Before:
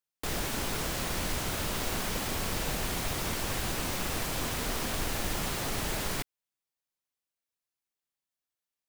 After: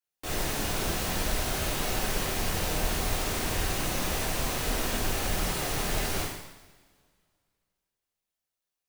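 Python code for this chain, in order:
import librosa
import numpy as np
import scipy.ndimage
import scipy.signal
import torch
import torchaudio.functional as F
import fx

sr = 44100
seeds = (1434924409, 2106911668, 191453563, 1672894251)

y = fx.rev_double_slope(x, sr, seeds[0], early_s=0.9, late_s=2.3, knee_db=-20, drr_db=-8.5)
y = y * 10.0 ** (-6.5 / 20.0)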